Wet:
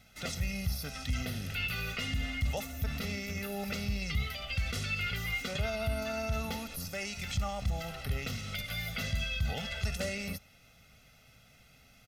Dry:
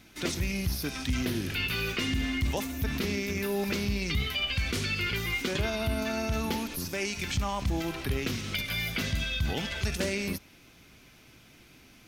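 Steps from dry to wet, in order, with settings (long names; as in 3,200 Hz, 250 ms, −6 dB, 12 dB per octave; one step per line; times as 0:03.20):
comb filter 1.5 ms, depth 88%
level −7 dB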